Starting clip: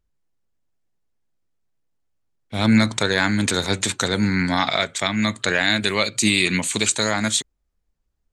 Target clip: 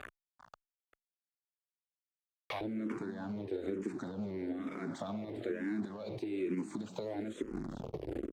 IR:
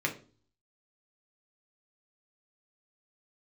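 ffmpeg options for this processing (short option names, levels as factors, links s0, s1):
-filter_complex "[0:a]aeval=exprs='val(0)+0.5*0.0501*sgn(val(0))':c=same,dynaudnorm=f=390:g=3:m=2.24,acrusher=bits=2:mode=log:mix=0:aa=0.000001,alimiter=limit=0.224:level=0:latency=1:release=81,asoftclip=type=hard:threshold=0.168,asetnsamples=n=441:p=0,asendcmd='2.61 bandpass f 340',bandpass=f=1100:t=q:w=2.4:csg=0,acompressor=threshold=0.0112:ratio=6,aecho=1:1:395:0.211,asplit=2[s0][s1];[s1]afreqshift=-1.1[s2];[s0][s2]amix=inputs=2:normalize=1,volume=2.24"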